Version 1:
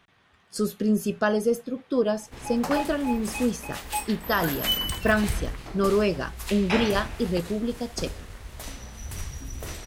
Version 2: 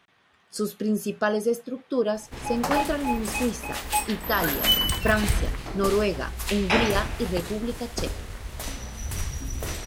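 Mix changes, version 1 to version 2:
speech: add low-shelf EQ 110 Hz −12 dB
background +4.5 dB

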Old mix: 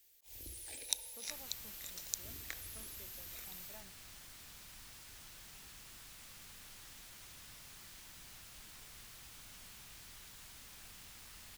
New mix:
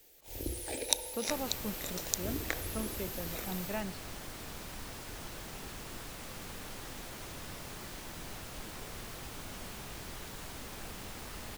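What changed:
speech: remove resonant band-pass 530 Hz, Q 0.87
master: remove guitar amp tone stack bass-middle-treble 5-5-5

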